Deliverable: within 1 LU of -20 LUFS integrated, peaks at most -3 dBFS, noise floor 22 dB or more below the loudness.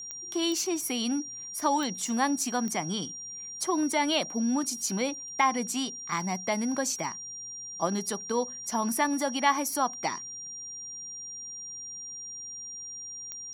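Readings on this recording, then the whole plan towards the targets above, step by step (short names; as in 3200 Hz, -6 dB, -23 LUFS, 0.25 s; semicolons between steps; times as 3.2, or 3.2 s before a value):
clicks 5; steady tone 5700 Hz; tone level -38 dBFS; loudness -30.0 LUFS; peak -10.5 dBFS; loudness target -20.0 LUFS
-> de-click; notch 5700 Hz, Q 30; gain +10 dB; limiter -3 dBFS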